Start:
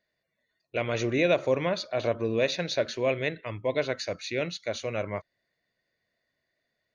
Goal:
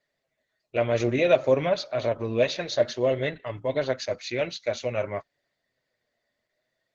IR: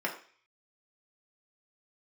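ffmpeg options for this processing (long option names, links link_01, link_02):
-filter_complex "[0:a]equalizer=frequency=620:width=4.9:gain=6,flanger=delay=6.9:depth=1.8:regen=34:speed=0.56:shape=triangular,asplit=3[link_01][link_02][link_03];[link_01]afade=type=out:start_time=2.71:duration=0.02[link_04];[link_02]asuperstop=centerf=2400:order=20:qfactor=6.4,afade=type=in:start_time=2.71:duration=0.02,afade=type=out:start_time=3.96:duration=0.02[link_05];[link_03]afade=type=in:start_time=3.96:duration=0.02[link_06];[link_04][link_05][link_06]amix=inputs=3:normalize=0,volume=4.5dB" -ar 48000 -c:a libopus -b:a 12k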